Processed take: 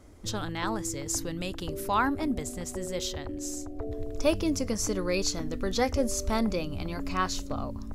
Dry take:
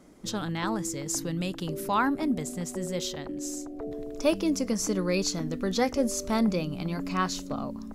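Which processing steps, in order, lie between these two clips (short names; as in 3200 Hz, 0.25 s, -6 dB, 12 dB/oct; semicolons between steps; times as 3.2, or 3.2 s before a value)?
resonant low shelf 120 Hz +9.5 dB, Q 3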